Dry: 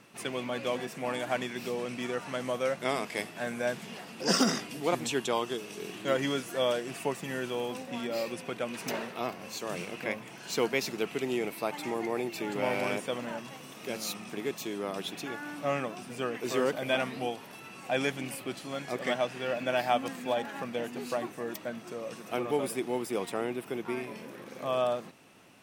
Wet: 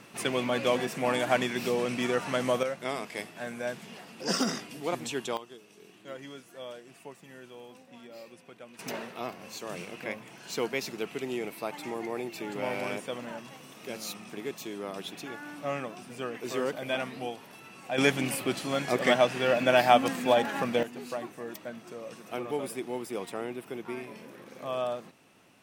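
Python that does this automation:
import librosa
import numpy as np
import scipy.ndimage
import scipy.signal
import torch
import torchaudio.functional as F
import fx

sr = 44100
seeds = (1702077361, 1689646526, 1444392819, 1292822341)

y = fx.gain(x, sr, db=fx.steps((0.0, 5.5), (2.63, -3.0), (5.37, -14.0), (8.79, -2.5), (17.98, 7.0), (20.83, -3.0)))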